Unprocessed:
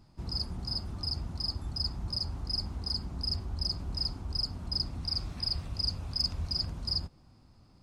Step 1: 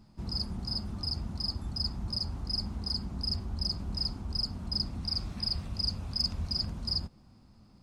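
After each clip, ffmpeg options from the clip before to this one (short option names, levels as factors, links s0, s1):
-af "equalizer=f=210:w=5.6:g=9.5"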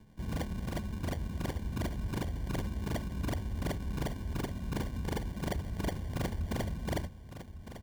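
-filter_complex "[0:a]acrossover=split=180[s0][s1];[s1]acrusher=samples=34:mix=1:aa=0.000001[s2];[s0][s2]amix=inputs=2:normalize=0,volume=28.2,asoftclip=hard,volume=0.0355,aecho=1:1:1156:0.251"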